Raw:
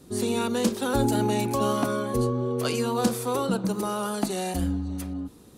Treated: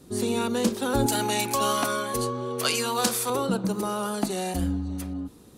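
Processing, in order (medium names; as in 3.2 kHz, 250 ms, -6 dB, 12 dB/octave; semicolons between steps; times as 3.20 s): 1.06–3.30 s: tilt shelf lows -8 dB, about 680 Hz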